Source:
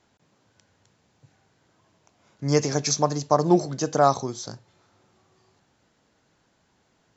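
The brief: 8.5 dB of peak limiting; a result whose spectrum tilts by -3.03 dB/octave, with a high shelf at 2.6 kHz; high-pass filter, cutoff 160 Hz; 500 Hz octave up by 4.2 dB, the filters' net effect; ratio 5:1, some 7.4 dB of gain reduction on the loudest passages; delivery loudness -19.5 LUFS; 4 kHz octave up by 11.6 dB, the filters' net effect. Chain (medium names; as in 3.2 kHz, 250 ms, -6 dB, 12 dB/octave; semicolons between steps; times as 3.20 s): high-pass 160 Hz; peaking EQ 500 Hz +5 dB; treble shelf 2.6 kHz +6.5 dB; peaking EQ 4 kHz +9 dB; compression 5:1, threshold -18 dBFS; trim +7.5 dB; peak limiter -7.5 dBFS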